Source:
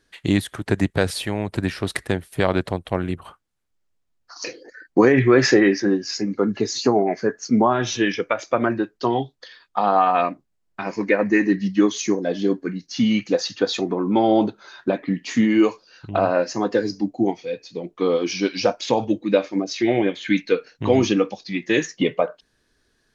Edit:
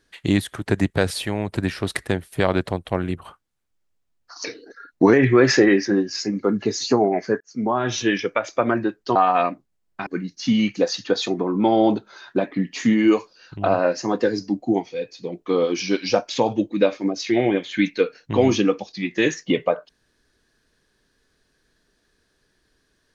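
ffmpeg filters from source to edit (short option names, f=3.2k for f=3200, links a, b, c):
-filter_complex "[0:a]asplit=6[a][b][c][d][e][f];[a]atrim=end=4.454[g];[b]atrim=start=4.45:end=5.08,asetpts=PTS-STARTPTS,asetrate=40572,aresample=44100[h];[c]atrim=start=5.076:end=7.35,asetpts=PTS-STARTPTS,afade=t=out:st=2.27:d=0.004:c=hsin[i];[d]atrim=start=7.35:end=9.102,asetpts=PTS-STARTPTS,afade=t=in:d=0.51[j];[e]atrim=start=9.948:end=10.862[k];[f]atrim=start=12.578[l];[g][h]acrossfade=d=0.004:c1=hsin:c2=hsin[m];[i][j]concat=n=2:v=0:a=1[n];[m][n]acrossfade=d=0.004:c1=hsin:c2=hsin[o];[o][k]acrossfade=d=0.004:c1=hsin:c2=hsin[p];[p][l]acrossfade=d=0.004:c1=hsin:c2=hsin"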